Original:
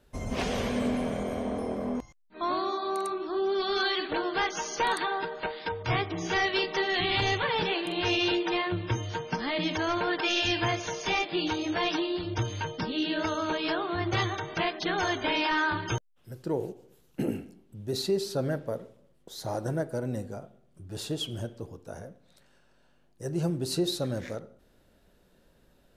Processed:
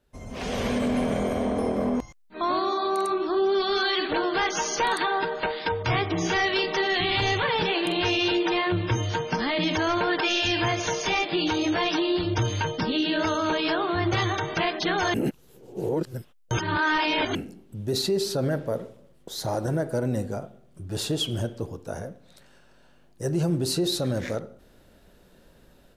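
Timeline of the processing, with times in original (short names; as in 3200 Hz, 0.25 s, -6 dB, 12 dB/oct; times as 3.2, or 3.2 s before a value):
15.14–17.35 reverse
whole clip: limiter -24.5 dBFS; AGC gain up to 15 dB; gain -7.5 dB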